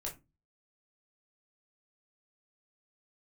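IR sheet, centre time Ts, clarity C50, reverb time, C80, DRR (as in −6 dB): 19 ms, 12.0 dB, 0.25 s, 21.0 dB, −3.0 dB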